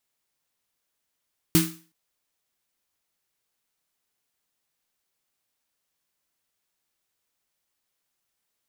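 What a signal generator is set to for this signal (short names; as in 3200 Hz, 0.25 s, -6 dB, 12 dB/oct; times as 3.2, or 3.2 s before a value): snare drum length 0.37 s, tones 170 Hz, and 320 Hz, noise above 1000 Hz, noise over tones -3.5 dB, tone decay 0.36 s, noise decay 0.38 s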